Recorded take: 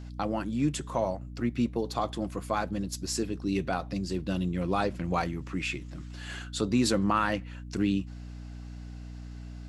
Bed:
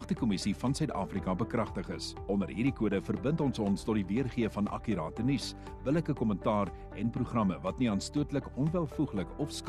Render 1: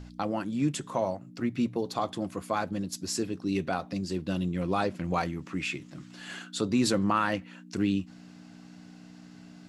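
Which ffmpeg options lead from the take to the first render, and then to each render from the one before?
-af "bandreject=f=60:t=h:w=4,bandreject=f=120:t=h:w=4"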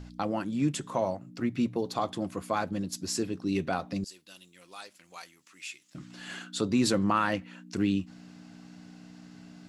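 -filter_complex "[0:a]asettb=1/sr,asplit=3[a][b][c];[a]atrim=end=4.044[d];[b]atrim=start=4.04:end=5.95,asetpts=PTS-STARTPTS,afade=t=in:d=0.004:c=qsin,afade=t=out:st=1.906:d=0.004:c=qsin,aderivative[e];[c]atrim=start=5.946[f];[d][e]acrossfade=d=0.004:c1=hsin:c2=qsin[g];[g][f]acrossfade=d=0.004:c1=qsin:c2=hsin"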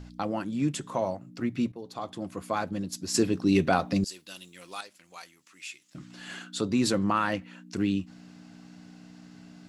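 -filter_complex "[0:a]asettb=1/sr,asplit=3[a][b][c];[a]atrim=end=3.144[d];[b]atrim=start=3.14:end=4.81,asetpts=PTS-STARTPTS,afade=t=in:d=0.004:c=qsin,afade=t=out:st=1.666:d=0.004:c=qsin,acontrast=79[e];[c]atrim=start=4.806[f];[d][e]acrossfade=d=0.004:c1=hsin:c2=qsin[g];[g][f]acrossfade=d=0.004:c1=qsin:c2=hsin,asplit=2[h][i];[h]atrim=end=1.72,asetpts=PTS-STARTPTS,afade=t=out:st=1.716:d=0.004:c=hsin:silence=0.211349[j];[i]atrim=start=1.72,asetpts=PTS-STARTPTS,afade=t=in:d=0.8:silence=0.211349[k];[j][k]concat=n=2:v=0:a=1"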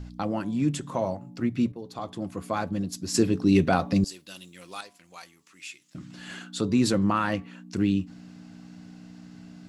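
-af "lowshelf=f=240:g=6.5,bandreject=f=142.3:t=h:w=4,bandreject=f=284.6:t=h:w=4,bandreject=f=426.9:t=h:w=4,bandreject=f=569.2:t=h:w=4,bandreject=f=711.5:t=h:w=4,bandreject=f=853.8:t=h:w=4,bandreject=f=996.1:t=h:w=4,bandreject=f=1.1384k:t=h:w=4"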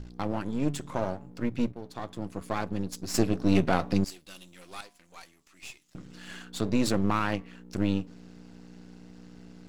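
-af "aeval=exprs='if(lt(val(0),0),0.251*val(0),val(0))':c=same"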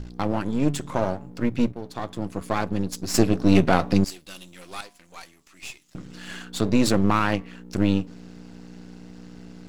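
-af "volume=6dB"

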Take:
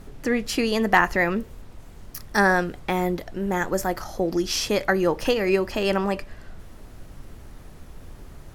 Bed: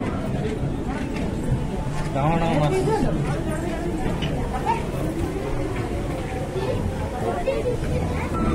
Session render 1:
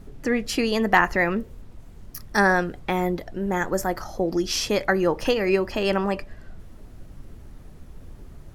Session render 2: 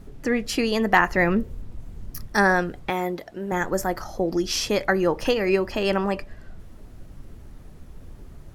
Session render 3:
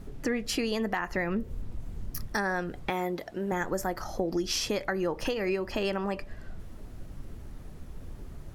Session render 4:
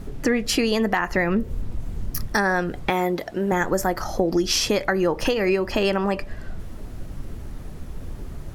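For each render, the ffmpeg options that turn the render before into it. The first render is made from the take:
-af "afftdn=nr=6:nf=-45"
-filter_complex "[0:a]asettb=1/sr,asplit=3[a][b][c];[a]atrim=end=1.174[d];[b]atrim=start=1.17:end=2.27,asetpts=PTS-STARTPTS,afade=t=in:d=0.004:c=qsin,afade=t=out:st=1.096:d=0.004:c=qsin,lowshelf=f=290:g=7[e];[c]atrim=start=2.266[f];[d][e]acrossfade=d=0.004:c1=hsin:c2=qsin[g];[g][f]acrossfade=d=0.004:c1=qsin:c2=hsin,asettb=1/sr,asplit=3[h][i][j];[h]atrim=end=2.904[k];[i]atrim=start=2.9:end=3.52,asetpts=PTS-STARTPTS,afade=t=in:d=0.004:c=qsin,afade=t=out:st=0.616:d=0.004:c=qsin,highpass=f=310:p=1[l];[j]atrim=start=3.516[m];[k][l]acrossfade=d=0.004:c1=hsin:c2=qsin[n];[n][m]acrossfade=d=0.004:c1=qsin:c2=hsin"
-af "alimiter=limit=-13.5dB:level=0:latency=1:release=348,acompressor=threshold=-28dB:ratio=2.5"
-af "volume=8.5dB"

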